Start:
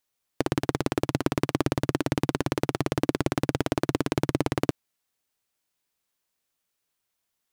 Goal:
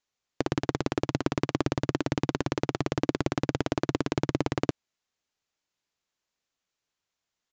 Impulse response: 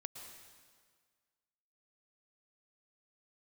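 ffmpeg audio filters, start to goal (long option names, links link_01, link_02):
-af "aresample=16000,aresample=44100,volume=-2dB"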